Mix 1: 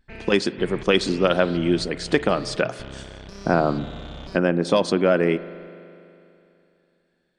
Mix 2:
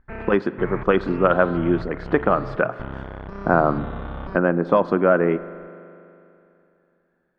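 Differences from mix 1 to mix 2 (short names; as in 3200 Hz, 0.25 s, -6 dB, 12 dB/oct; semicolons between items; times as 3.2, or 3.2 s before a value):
background +5.5 dB; master: add synth low-pass 1300 Hz, resonance Q 2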